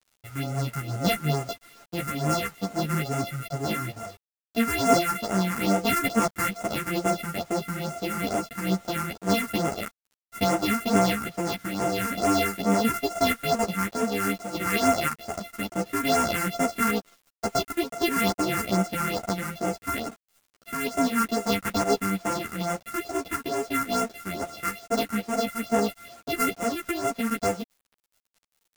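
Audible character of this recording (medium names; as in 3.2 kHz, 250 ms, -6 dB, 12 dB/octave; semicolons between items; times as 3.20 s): a buzz of ramps at a fixed pitch in blocks of 64 samples; phasing stages 4, 2.3 Hz, lowest notch 590–4000 Hz; a quantiser's noise floor 8-bit, dither none; a shimmering, thickened sound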